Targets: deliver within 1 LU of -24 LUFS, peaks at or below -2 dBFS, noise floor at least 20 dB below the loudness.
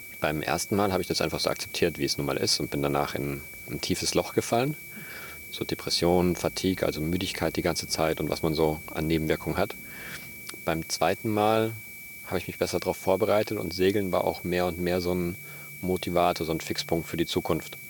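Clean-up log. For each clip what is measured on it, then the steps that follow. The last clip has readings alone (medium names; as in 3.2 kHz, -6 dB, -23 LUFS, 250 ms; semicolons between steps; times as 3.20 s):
steady tone 2.3 kHz; tone level -42 dBFS; noise floor -43 dBFS; noise floor target -48 dBFS; loudness -27.5 LUFS; peak level -9.0 dBFS; loudness target -24.0 LUFS
-> band-stop 2.3 kHz, Q 30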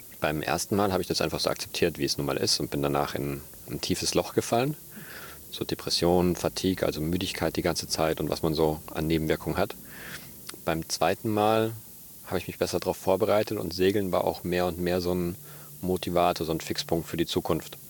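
steady tone not found; noise floor -46 dBFS; noise floor target -48 dBFS
-> noise reduction 6 dB, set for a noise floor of -46 dBFS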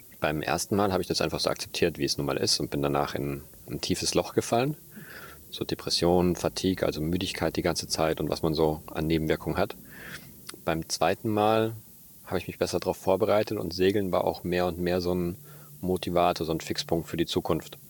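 noise floor -50 dBFS; loudness -27.5 LUFS; peak level -9.5 dBFS; loudness target -24.0 LUFS
-> trim +3.5 dB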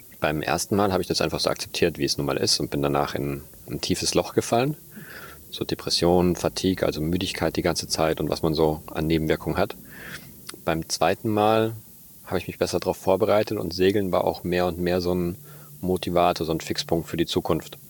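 loudness -24.0 LUFS; peak level -6.0 dBFS; noise floor -46 dBFS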